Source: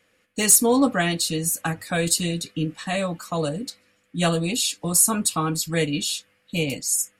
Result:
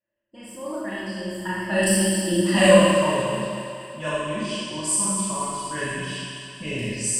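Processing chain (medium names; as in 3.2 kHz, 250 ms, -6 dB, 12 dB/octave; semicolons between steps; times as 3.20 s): Doppler pass-by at 2.63 s, 40 m/s, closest 4.5 m; recorder AGC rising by 5.8 dB/s; level-controlled noise filter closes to 2 kHz, open at -25.5 dBFS; rippled EQ curve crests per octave 1.3, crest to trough 15 dB; harmonic-percussive split percussive +4 dB; peaking EQ 4.3 kHz -7 dB 1.2 oct; thinning echo 238 ms, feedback 65%, high-pass 190 Hz, level -11.5 dB; Schroeder reverb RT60 1.7 s, combs from 26 ms, DRR -7.5 dB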